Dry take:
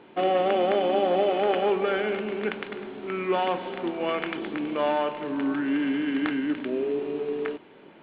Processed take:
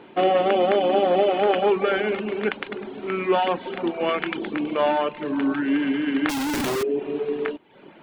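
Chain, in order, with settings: 6.29–6.83 infinite clipping; reverb removal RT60 0.6 s; gain +5 dB

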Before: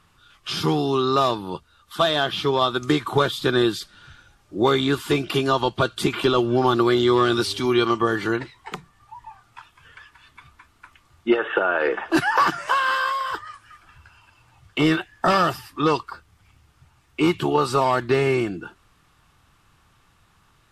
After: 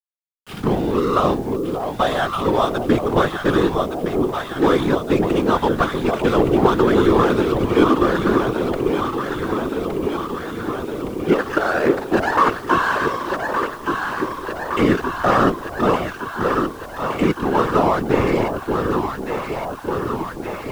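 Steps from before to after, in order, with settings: LPF 2600 Hz 12 dB/oct; backlash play -25.5 dBFS; echo with dull and thin repeats by turns 0.583 s, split 830 Hz, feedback 84%, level -4 dB; whisperiser; requantised 8-bit, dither none; gain +2.5 dB

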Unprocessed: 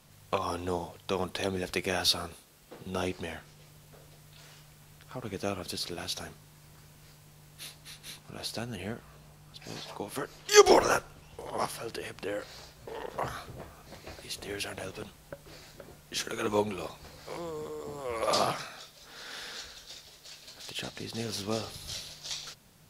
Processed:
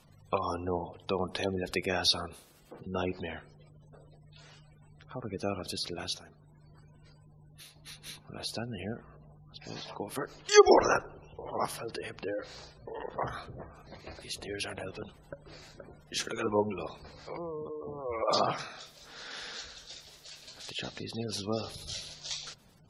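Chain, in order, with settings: spectral gate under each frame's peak -20 dB strong; tape echo 93 ms, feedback 69%, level -21.5 dB, low-pass 1000 Hz; 6.16–7.76 compressor 4:1, threshold -50 dBFS, peak gain reduction 11 dB

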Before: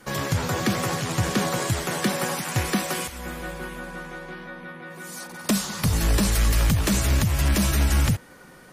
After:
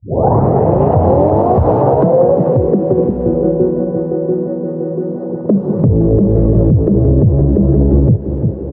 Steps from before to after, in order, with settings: tape start at the beginning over 2.33 s; HPF 68 Hz 24 dB/oct; band shelf 2900 Hz -8 dB 2.6 oct; notch 2300 Hz, Q 20; feedback echo 0.346 s, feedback 49%, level -14.5 dB; low-pass sweep 800 Hz -> 390 Hz, 1.87–2.81; graphic EQ 125/500/8000 Hz +8/+9/-9 dB; thin delay 0.299 s, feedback 56%, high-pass 1900 Hz, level -8 dB; compressor 6:1, threshold -20 dBFS, peak gain reduction 9.5 dB; maximiser +16 dB; gain -1 dB

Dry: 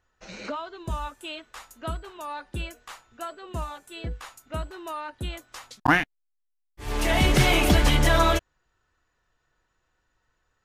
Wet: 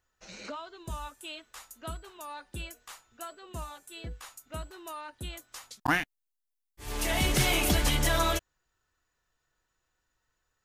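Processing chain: high shelf 4900 Hz +11.5 dB; gain -7.5 dB

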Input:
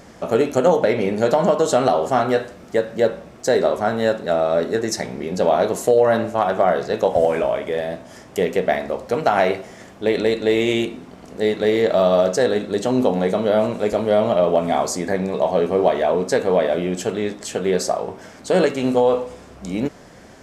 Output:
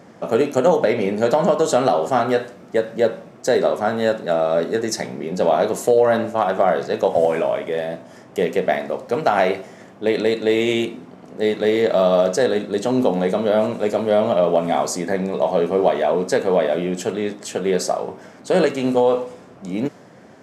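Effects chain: HPF 110 Hz 24 dB/oct; mismatched tape noise reduction decoder only

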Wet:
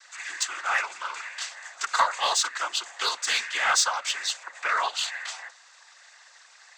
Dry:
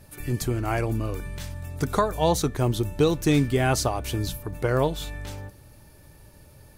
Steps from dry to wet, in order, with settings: HPF 1100 Hz 24 dB/oct; notch 2600 Hz, Q 7.7; noise vocoder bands 16; in parallel at -3.5 dB: soft clip -32 dBFS, distortion -9 dB; on the sum: gain +6 dB

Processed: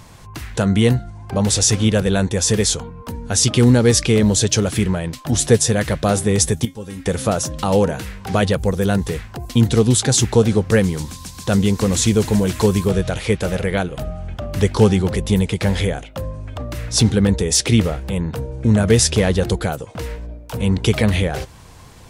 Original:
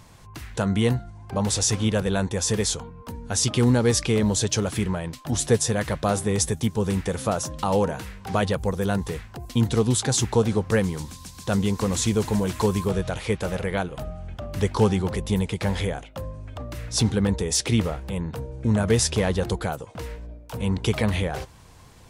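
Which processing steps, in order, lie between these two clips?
dynamic EQ 980 Hz, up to -6 dB, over -43 dBFS, Q 1.8; 6.65–7.06 resonator 270 Hz, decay 0.17 s, harmonics all, mix 90%; gain +7 dB

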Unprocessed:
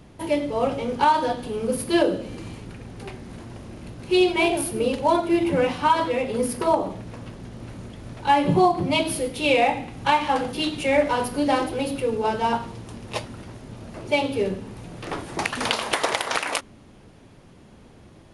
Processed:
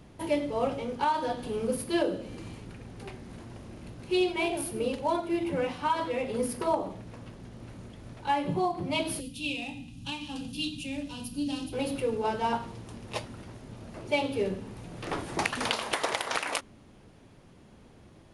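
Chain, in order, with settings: vocal rider 0.5 s; spectral gain 9.2–11.73, 310–2400 Hz -17 dB; gain -7 dB

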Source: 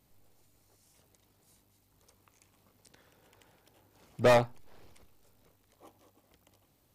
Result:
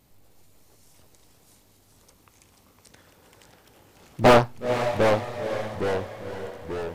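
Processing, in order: echoes that change speed 0.23 s, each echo -2 st, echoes 3, each echo -6 dB; diffused feedback echo 0.494 s, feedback 47%, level -8.5 dB; Doppler distortion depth 0.9 ms; gain +7.5 dB

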